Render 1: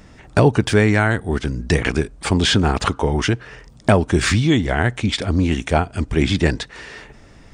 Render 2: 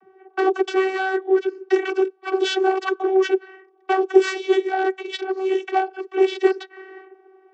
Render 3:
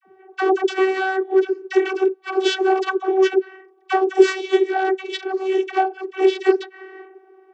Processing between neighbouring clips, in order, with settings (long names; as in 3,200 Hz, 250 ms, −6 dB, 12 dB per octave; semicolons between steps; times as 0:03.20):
wavefolder on the positive side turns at −10 dBFS; low-pass that shuts in the quiet parts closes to 1,100 Hz, open at −12.5 dBFS; channel vocoder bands 32, saw 380 Hz
all-pass dispersion lows, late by 48 ms, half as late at 770 Hz; level +1.5 dB